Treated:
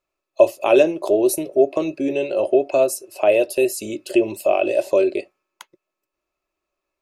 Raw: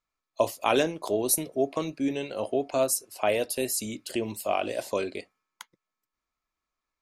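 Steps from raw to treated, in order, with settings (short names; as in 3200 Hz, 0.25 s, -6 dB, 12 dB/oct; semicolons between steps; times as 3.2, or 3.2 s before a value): bell 240 Hz -6.5 dB 0.34 oct; in parallel at -1.5 dB: compressor, threshold -32 dBFS, peak gain reduction 13.5 dB; on the sum: small resonant body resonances 370/570/2600 Hz, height 17 dB, ringing for 40 ms; gain -3.5 dB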